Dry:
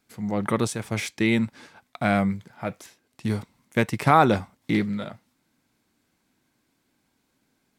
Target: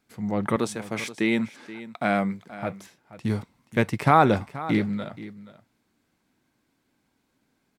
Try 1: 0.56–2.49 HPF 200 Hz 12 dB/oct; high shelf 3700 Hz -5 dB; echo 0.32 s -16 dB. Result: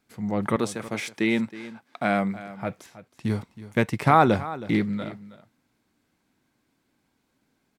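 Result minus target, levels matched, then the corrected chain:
echo 0.158 s early
0.56–2.49 HPF 200 Hz 12 dB/oct; high shelf 3700 Hz -5 dB; echo 0.478 s -16 dB

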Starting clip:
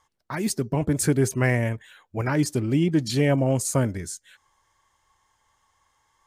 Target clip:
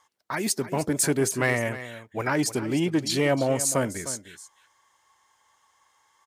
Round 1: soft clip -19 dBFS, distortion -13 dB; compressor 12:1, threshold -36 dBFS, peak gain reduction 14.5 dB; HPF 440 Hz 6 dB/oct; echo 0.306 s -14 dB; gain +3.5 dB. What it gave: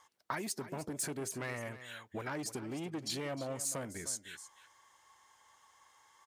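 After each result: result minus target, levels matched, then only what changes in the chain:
compressor: peak gain reduction +14.5 dB; soft clip: distortion +10 dB
remove: compressor 12:1, threshold -36 dBFS, peak gain reduction 14.5 dB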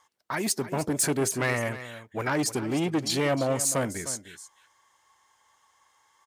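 soft clip: distortion +10 dB
change: soft clip -11.5 dBFS, distortion -22 dB

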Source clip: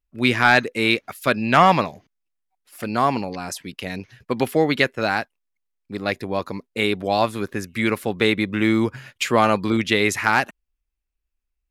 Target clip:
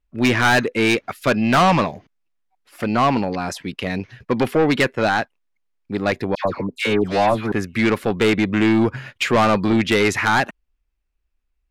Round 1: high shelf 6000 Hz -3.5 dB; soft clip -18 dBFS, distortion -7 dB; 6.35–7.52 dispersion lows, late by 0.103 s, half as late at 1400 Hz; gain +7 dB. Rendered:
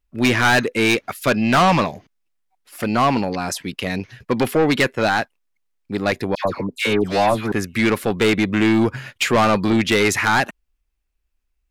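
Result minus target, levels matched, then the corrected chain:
8000 Hz band +4.0 dB
high shelf 6000 Hz -15 dB; soft clip -18 dBFS, distortion -8 dB; 6.35–7.52 dispersion lows, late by 0.103 s, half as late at 1400 Hz; gain +7 dB

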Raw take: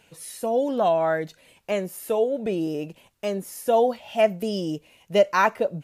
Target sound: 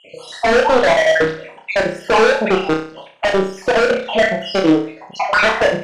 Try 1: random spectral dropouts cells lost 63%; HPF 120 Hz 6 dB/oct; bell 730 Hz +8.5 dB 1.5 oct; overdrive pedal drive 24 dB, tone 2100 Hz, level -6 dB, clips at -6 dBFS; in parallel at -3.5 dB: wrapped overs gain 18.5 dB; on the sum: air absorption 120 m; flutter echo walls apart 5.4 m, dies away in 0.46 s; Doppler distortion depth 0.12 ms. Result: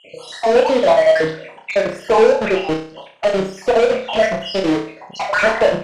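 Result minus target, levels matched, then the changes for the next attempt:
wrapped overs: distortion -19 dB
change: wrapped overs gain 12 dB

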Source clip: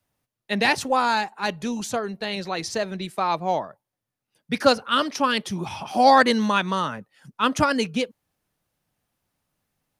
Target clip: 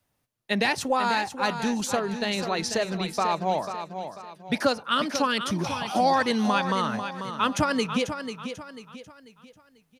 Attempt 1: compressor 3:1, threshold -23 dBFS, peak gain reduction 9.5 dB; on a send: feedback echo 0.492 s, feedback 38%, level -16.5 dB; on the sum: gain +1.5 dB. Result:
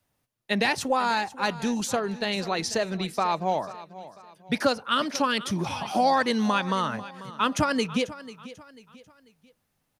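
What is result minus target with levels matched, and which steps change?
echo-to-direct -7.5 dB
change: feedback echo 0.492 s, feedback 38%, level -9 dB

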